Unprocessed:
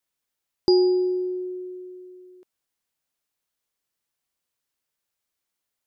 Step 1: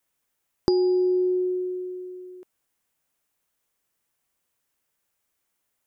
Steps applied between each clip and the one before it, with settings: bell 4300 Hz -6 dB 0.9 oct; compressor 6:1, threshold -26 dBFS, peak gain reduction 10.5 dB; gain +6.5 dB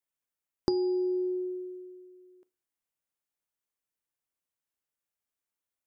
FDN reverb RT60 0.34 s, low-frequency decay 1.1×, high-frequency decay 0.5×, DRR 18.5 dB; upward expander 1.5:1, over -38 dBFS; gain -4.5 dB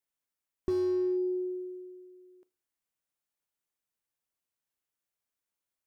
slew limiter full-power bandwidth 18 Hz

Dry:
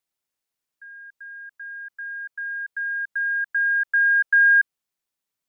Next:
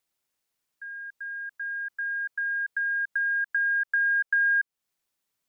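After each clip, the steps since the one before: compressor 2.5:1, threshold -31 dBFS, peak gain reduction 11 dB; gain +3.5 dB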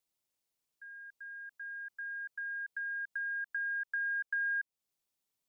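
bell 1600 Hz -6 dB 1.1 oct; gain -4.5 dB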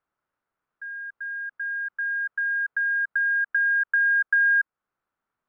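synth low-pass 1400 Hz, resonance Q 3.6; gain +7 dB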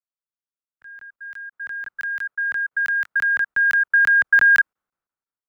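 crackling interface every 0.17 s, samples 1024, zero, from 0.65; three-band expander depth 70%; gain +4.5 dB

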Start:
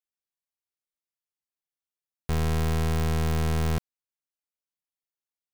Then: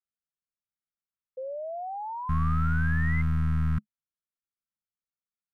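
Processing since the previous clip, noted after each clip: EQ curve 150 Hz 0 dB, 210 Hz +3 dB, 390 Hz -26 dB, 690 Hz -26 dB, 1300 Hz 0 dB, 2500 Hz -14 dB, 4400 Hz -22 dB, 7200 Hz -24 dB, 10000 Hz -22 dB, 15000 Hz -25 dB; painted sound rise, 1.37–3.22, 510–2100 Hz -35 dBFS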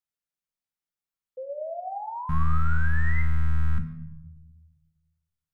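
shoebox room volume 350 m³, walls mixed, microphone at 0.57 m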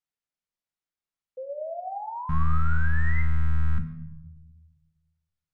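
air absorption 52 m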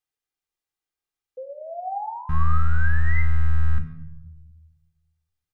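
comb 2.5 ms, depth 54%; gain +1.5 dB

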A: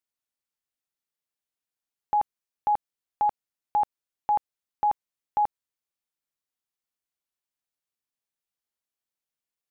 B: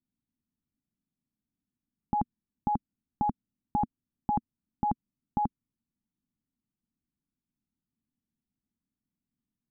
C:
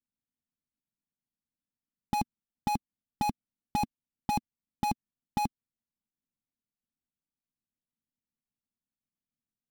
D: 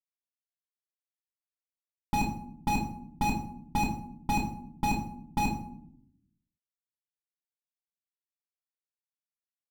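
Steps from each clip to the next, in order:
Bessel low-pass 700 Hz, order 2; resonant low shelf 350 Hz +13.5 dB, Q 3; gain +1.5 dB
switching dead time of 0.15 ms; upward expander 1.5:1, over -45 dBFS
crossover distortion -45 dBFS; reverb RT60 0.65 s, pre-delay 3 ms, DRR -2.5 dB; gain -4 dB

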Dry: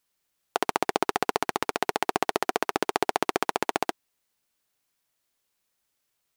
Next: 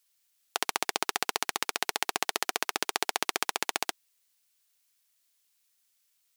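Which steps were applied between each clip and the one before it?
tilt shelf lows -9 dB, about 1400 Hz; gain -3 dB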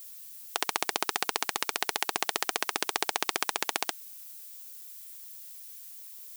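added noise violet -46 dBFS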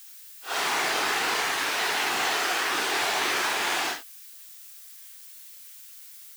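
phase scrambler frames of 0.2 s; EQ curve 940 Hz 0 dB, 1600 Hz +4 dB, 16000 Hz -6 dB; gain +5 dB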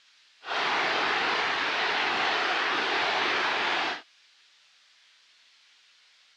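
LPF 4400 Hz 24 dB/oct

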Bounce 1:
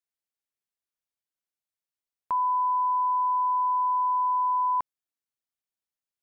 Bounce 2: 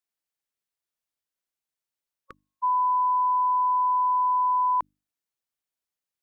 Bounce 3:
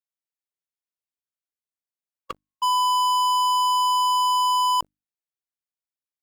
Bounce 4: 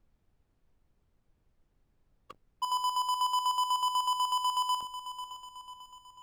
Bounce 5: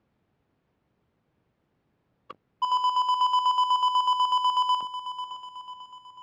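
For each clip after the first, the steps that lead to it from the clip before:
notches 50/100/150/200/250/300 Hz; spectral repair 1.88–2.61, 550–1100 Hz before; gain +2 dB
sample leveller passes 5
diffused feedback echo 0.511 s, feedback 48%, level -12 dB; chopper 8.1 Hz, depth 60%, duty 45%; added noise brown -61 dBFS; gain -7.5 dB
BPF 130–3400 Hz; gain +6.5 dB

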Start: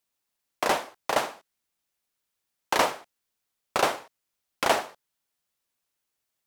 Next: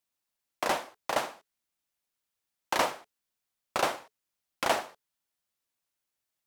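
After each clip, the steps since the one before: notch 430 Hz, Q 13; gain -4 dB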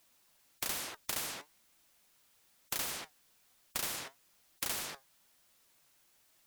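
flange 1.1 Hz, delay 2.7 ms, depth 4.9 ms, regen +71%; spectral compressor 10:1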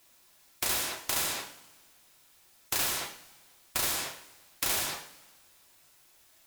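two-slope reverb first 0.5 s, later 1.8 s, from -19 dB, DRR 0 dB; gain +4.5 dB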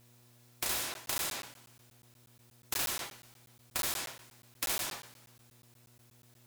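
buzz 120 Hz, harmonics 39, -60 dBFS -8 dB/oct; crackling interface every 0.12 s, samples 512, zero, from 0.94; gain -4 dB

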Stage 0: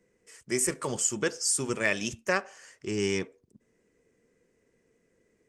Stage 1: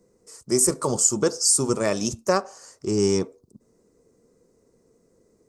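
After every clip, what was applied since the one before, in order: band shelf 2300 Hz -15 dB 1.3 oct; gain +8 dB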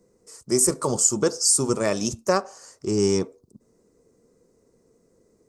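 nothing audible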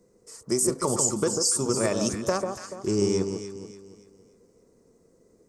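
compressor, threshold -21 dBFS, peak gain reduction 7.5 dB; on a send: echo with dull and thin repeats by turns 0.144 s, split 1200 Hz, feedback 60%, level -4.5 dB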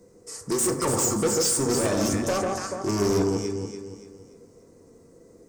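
soft clip -28 dBFS, distortion -7 dB; on a send at -4.5 dB: reverb RT60 1.0 s, pre-delay 5 ms; on the sum: gain +6.5 dB

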